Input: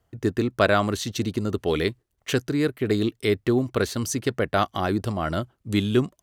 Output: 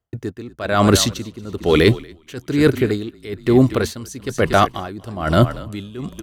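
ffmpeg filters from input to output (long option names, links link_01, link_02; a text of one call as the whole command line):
ffmpeg -i in.wav -filter_complex "[0:a]agate=range=-33dB:threshold=-45dB:ratio=3:detection=peak,areverse,acompressor=threshold=-37dB:ratio=5,areverse,asplit=5[link_01][link_02][link_03][link_04][link_05];[link_02]adelay=235,afreqshift=-37,volume=-14dB[link_06];[link_03]adelay=470,afreqshift=-74,volume=-21.1dB[link_07];[link_04]adelay=705,afreqshift=-111,volume=-28.3dB[link_08];[link_05]adelay=940,afreqshift=-148,volume=-35.4dB[link_09];[link_01][link_06][link_07][link_08][link_09]amix=inputs=5:normalize=0,apsyclip=29dB,aeval=exprs='val(0)*pow(10,-21*(0.5-0.5*cos(2*PI*1.1*n/s))/20)':channel_layout=same,volume=-3dB" out.wav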